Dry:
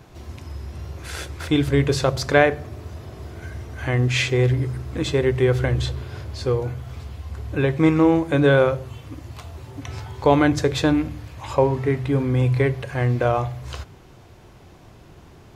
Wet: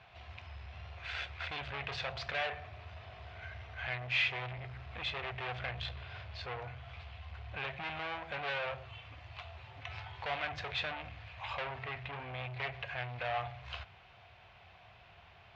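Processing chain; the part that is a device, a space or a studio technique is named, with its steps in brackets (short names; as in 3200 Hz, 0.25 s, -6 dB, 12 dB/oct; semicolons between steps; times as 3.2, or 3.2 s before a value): scooped metal amplifier (tube stage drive 25 dB, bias 0.25; speaker cabinet 93–3400 Hz, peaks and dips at 140 Hz -6 dB, 700 Hz +9 dB, 2500 Hz +4 dB; passive tone stack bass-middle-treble 10-0-10); gain +1.5 dB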